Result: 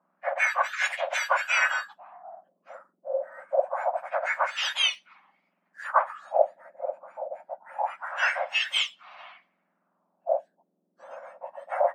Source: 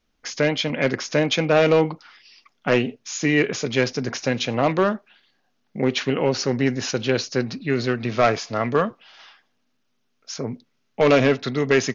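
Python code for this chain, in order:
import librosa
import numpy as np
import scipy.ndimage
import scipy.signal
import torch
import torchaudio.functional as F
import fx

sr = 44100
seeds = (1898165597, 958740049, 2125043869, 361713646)

y = fx.octave_mirror(x, sr, pivot_hz=1900.0)
y = fx.filter_lfo_lowpass(y, sr, shape='sine', hz=0.25, low_hz=380.0, high_hz=3300.0, q=2.4)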